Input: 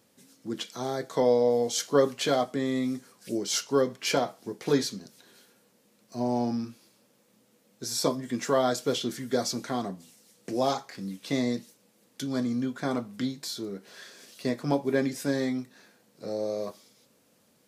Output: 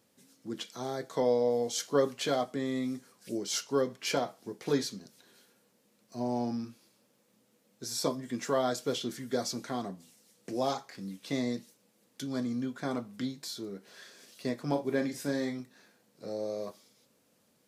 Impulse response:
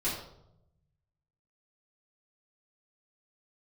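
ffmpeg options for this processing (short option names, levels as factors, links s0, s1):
-filter_complex "[0:a]asettb=1/sr,asplit=3[s0][s1][s2];[s0]atrim=end=14.714[s3];[s1]atrim=start=14.71:end=15.6,asetpts=PTS-STARTPTS,afade=t=in:d=0.004:c=qsin,afade=t=out:st=0.886:d=0.004:c=qsin,asplit=2[s4][s5];[s5]adelay=41,volume=0.355[s6];[s4][s6]amix=inputs=2:normalize=0,atrim=end_sample=39249[s7];[s2]atrim=start=15.596[s8];[s3][s7]acrossfade=d=0.004:c1=hsin:c2=qsin[s9];[s9][s8]acrossfade=d=0.004:c1=qsin:c2=hsin,volume=0.596"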